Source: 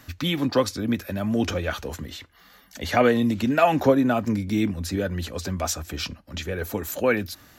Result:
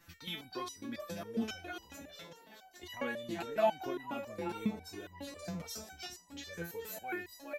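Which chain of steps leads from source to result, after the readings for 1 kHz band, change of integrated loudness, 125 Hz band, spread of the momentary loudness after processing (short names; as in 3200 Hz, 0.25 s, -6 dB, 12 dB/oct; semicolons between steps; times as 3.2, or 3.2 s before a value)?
-13.0 dB, -15.5 dB, -20.5 dB, 14 LU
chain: frequency-shifting echo 0.417 s, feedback 45%, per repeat +98 Hz, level -10 dB; stepped resonator 7.3 Hz 170–970 Hz; gain +1 dB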